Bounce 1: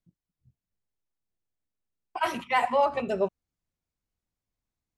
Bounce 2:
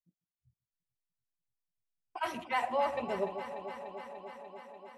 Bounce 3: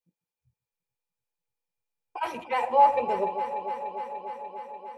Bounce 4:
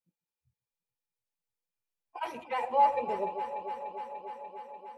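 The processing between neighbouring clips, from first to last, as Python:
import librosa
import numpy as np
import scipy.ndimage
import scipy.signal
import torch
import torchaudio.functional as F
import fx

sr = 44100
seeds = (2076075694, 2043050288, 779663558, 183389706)

y1 = fx.echo_alternate(x, sr, ms=147, hz=800.0, feedback_pct=88, wet_db=-9.0)
y1 = fx.noise_reduce_blind(y1, sr, reduce_db=16)
y1 = y1 * 10.0 ** (-7.5 / 20.0)
y2 = fx.small_body(y1, sr, hz=(490.0, 850.0, 2400.0), ring_ms=50, db=16)
y3 = fx.spec_quant(y2, sr, step_db=15)
y3 = y3 * 10.0 ** (-5.0 / 20.0)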